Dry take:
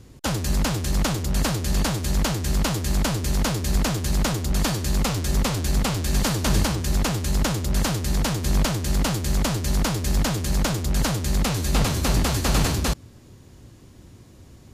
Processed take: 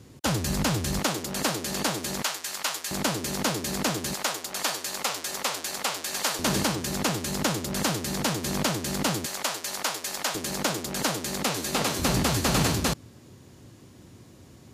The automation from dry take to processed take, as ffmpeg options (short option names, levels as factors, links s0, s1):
-af "asetnsamples=n=441:p=0,asendcmd='0.99 highpass f 260;2.22 highpass f 930;2.91 highpass f 220;4.14 highpass f 620;6.39 highpass f 190;9.26 highpass f 660;10.35 highpass f 270;11.99 highpass f 110',highpass=100"